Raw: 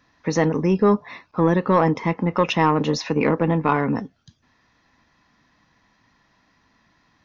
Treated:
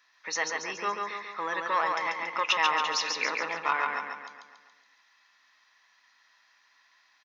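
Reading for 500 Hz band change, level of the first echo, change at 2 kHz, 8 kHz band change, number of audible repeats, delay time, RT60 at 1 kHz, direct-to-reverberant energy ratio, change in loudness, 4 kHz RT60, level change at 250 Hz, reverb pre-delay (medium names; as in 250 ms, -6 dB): -16.0 dB, -3.5 dB, +1.0 dB, no reading, 6, 140 ms, no reverb, no reverb, -8.0 dB, no reverb, -26.5 dB, no reverb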